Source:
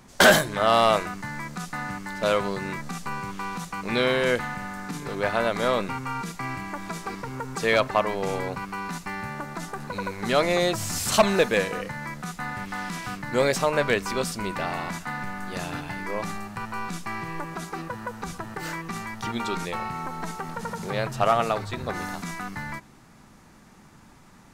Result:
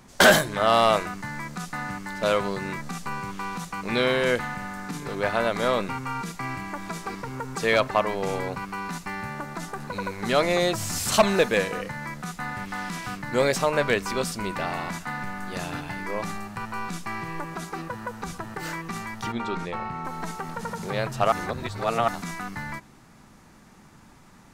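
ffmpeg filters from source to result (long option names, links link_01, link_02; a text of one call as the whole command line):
ffmpeg -i in.wav -filter_complex "[0:a]asettb=1/sr,asplit=3[link_01][link_02][link_03];[link_01]atrim=end=19.324[link_04];[link_02]atrim=start=19.32:end=20.05,asetpts=PTS-STARTPTS,afade=type=in:duration=0.004:curve=qsin,afade=type=out:start_time=0.726:duration=0.004:curve=qsin,aemphasis=mode=reproduction:type=75kf[link_05];[link_03]atrim=start=20.046[link_06];[link_04][link_05]acrossfade=duration=0.004:curve1=hsin:curve2=qsin[link_07];[link_07][link_06]acrossfade=duration=0.004:curve1=qsin:curve2=hsin,asplit=3[link_08][link_09][link_10];[link_08]atrim=end=21.322[link_11];[link_09]atrim=start=21.318:end=22.082,asetpts=PTS-STARTPTS,areverse[link_12];[link_10]atrim=start=22.078[link_13];[link_11][link_12]acrossfade=duration=0.004:curve1=hsin:curve2=hsin[link_14];[link_14][link_13]acrossfade=duration=0.004:curve1=hsin:curve2=hsin" out.wav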